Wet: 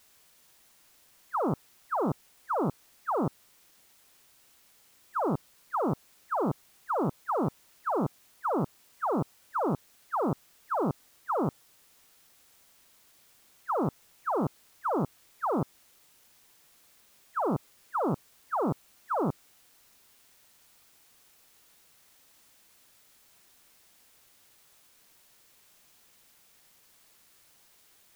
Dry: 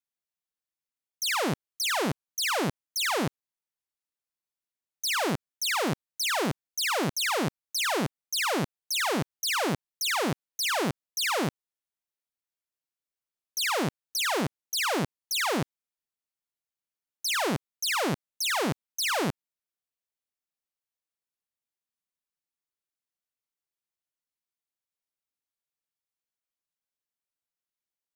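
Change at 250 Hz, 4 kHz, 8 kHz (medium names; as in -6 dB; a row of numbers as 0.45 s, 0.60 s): 0.0 dB, under -30 dB, -24.0 dB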